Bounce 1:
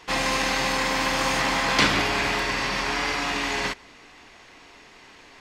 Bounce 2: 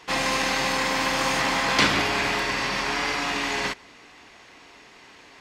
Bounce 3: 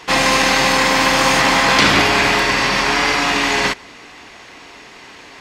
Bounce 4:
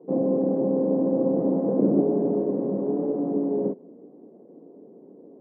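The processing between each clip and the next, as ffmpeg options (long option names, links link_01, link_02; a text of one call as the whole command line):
ffmpeg -i in.wav -af "highpass=frequency=67:poles=1" out.wav
ffmpeg -i in.wav -af "alimiter=level_in=11dB:limit=-1dB:release=50:level=0:latency=1,volume=-1dB" out.wav
ffmpeg -i in.wav -af "asuperpass=centerf=300:order=8:qfactor=0.81" out.wav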